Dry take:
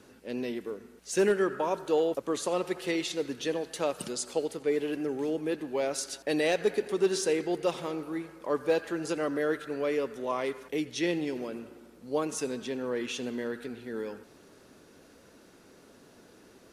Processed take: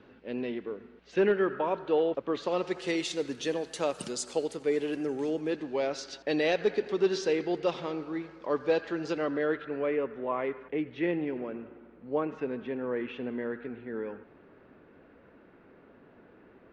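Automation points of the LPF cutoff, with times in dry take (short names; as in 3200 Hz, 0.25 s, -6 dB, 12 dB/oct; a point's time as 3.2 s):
LPF 24 dB/oct
2.29 s 3400 Hz
2.96 s 9100 Hz
5.13 s 9100 Hz
5.89 s 5100 Hz
9.1 s 5100 Hz
9.99 s 2400 Hz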